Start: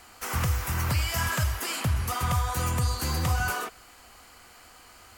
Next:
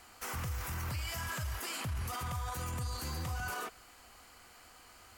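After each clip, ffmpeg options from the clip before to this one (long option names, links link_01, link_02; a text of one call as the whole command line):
ffmpeg -i in.wav -af "alimiter=level_in=1dB:limit=-24dB:level=0:latency=1:release=12,volume=-1dB,volume=-5.5dB" out.wav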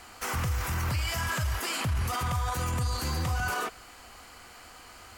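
ffmpeg -i in.wav -af "highshelf=frequency=9900:gain=-6,volume=8.5dB" out.wav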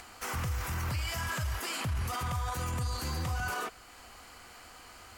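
ffmpeg -i in.wav -af "acompressor=mode=upward:threshold=-42dB:ratio=2.5,volume=-4dB" out.wav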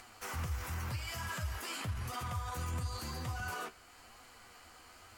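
ffmpeg -i in.wav -af "flanger=delay=7.6:depth=5.6:regen=41:speed=0.94:shape=triangular,volume=-1.5dB" out.wav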